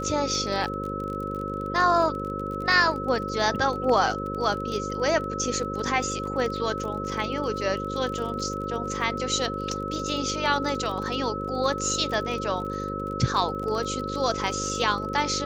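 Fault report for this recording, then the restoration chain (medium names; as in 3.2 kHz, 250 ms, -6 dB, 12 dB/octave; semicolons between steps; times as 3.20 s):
buzz 50 Hz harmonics 11 -33 dBFS
crackle 30 per s -32 dBFS
whine 1.3 kHz -32 dBFS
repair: de-click; de-hum 50 Hz, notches 11; band-stop 1.3 kHz, Q 30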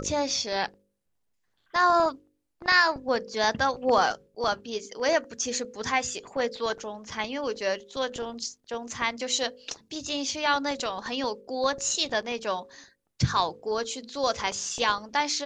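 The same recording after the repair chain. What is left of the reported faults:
nothing left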